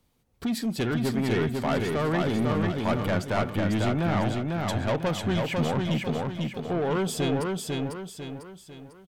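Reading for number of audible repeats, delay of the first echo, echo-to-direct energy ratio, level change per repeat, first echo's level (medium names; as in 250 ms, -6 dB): 4, 498 ms, -2.0 dB, -7.5 dB, -3.0 dB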